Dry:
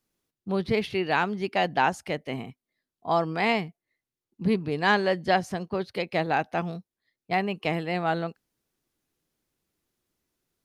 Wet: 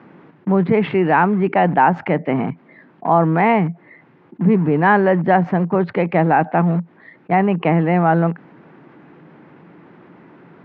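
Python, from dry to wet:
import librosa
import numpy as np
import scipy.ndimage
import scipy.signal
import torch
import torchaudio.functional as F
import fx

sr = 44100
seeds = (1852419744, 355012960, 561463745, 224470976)

p1 = fx.quant_dither(x, sr, seeds[0], bits=6, dither='none')
p2 = x + (p1 * librosa.db_to_amplitude(-8.5))
p3 = fx.cabinet(p2, sr, low_hz=130.0, low_slope=24, high_hz=2000.0, hz=(170.0, 300.0, 890.0), db=(7, 4, 5))
p4 = fx.env_flatten(p3, sr, amount_pct=50)
y = p4 * librosa.db_to_amplitude(3.0)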